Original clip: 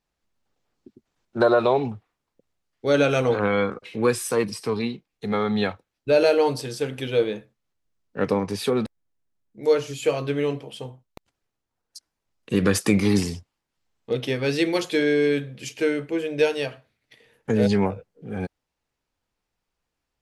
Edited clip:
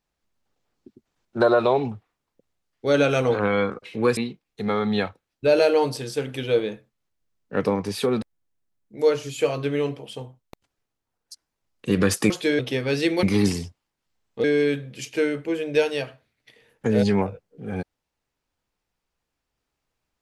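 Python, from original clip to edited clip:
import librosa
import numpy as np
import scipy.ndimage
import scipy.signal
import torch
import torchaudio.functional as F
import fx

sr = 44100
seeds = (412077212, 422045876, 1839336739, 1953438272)

y = fx.edit(x, sr, fx.cut(start_s=4.17, length_s=0.64),
    fx.swap(start_s=12.94, length_s=1.21, other_s=14.79, other_length_s=0.29), tone=tone)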